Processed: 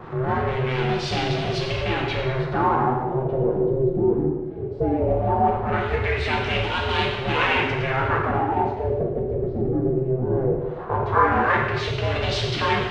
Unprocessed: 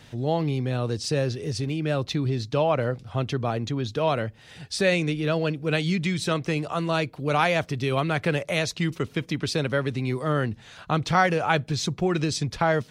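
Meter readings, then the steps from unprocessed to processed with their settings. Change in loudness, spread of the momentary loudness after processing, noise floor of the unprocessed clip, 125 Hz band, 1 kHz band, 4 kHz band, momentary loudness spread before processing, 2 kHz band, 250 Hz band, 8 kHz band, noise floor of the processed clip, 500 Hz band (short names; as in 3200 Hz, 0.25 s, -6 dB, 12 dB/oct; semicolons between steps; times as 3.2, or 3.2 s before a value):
+3.0 dB, 5 LU, -51 dBFS, +1.0 dB, +6.0 dB, +2.0 dB, 6 LU, +3.0 dB, +1.0 dB, n/a, -30 dBFS, +3.5 dB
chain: in parallel at -10.5 dB: fuzz box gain 46 dB, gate -51 dBFS; on the sum: ring modulator 260 Hz; LFO low-pass sine 0.18 Hz 350–3300 Hz; reverse echo 0.3 s -22.5 dB; non-linear reverb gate 0.37 s falling, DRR -1.5 dB; gain -5 dB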